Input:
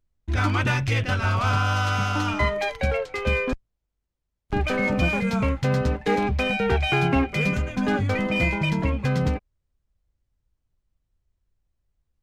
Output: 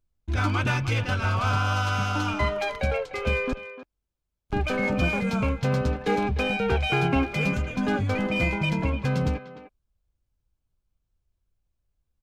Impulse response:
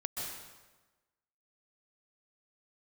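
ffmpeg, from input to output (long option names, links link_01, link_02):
-filter_complex "[0:a]bandreject=frequency=1900:width=8.7,asplit=2[link_01][link_02];[link_02]adelay=300,highpass=300,lowpass=3400,asoftclip=type=hard:threshold=-17.5dB,volume=-12dB[link_03];[link_01][link_03]amix=inputs=2:normalize=0,volume=-2dB"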